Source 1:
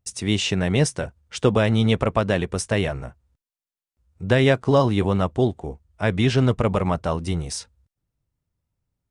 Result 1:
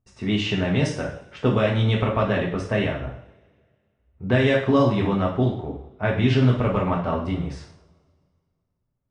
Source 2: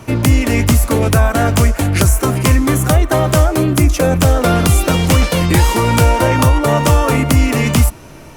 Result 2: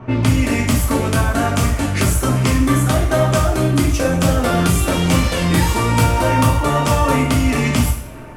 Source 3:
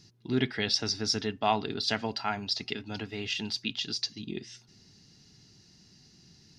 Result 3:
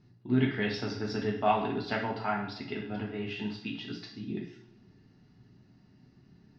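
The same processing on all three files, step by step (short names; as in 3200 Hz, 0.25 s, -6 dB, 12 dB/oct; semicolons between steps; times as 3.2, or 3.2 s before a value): low-pass opened by the level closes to 1400 Hz, open at -8 dBFS; compressor 1.5:1, threshold -23 dBFS; two-slope reverb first 0.54 s, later 2 s, from -24 dB, DRR -3 dB; gain -2 dB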